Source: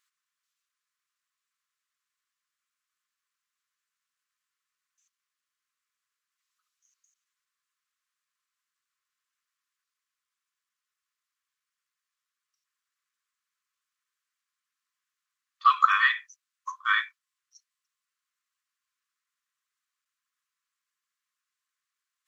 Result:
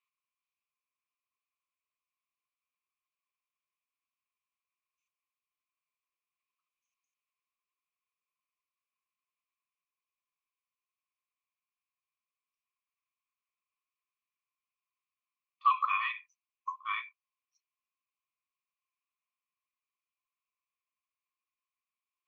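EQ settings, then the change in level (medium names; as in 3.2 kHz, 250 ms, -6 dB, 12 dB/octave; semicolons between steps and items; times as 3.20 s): two resonant band-passes 1.6 kHz, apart 1.2 oct; 0.0 dB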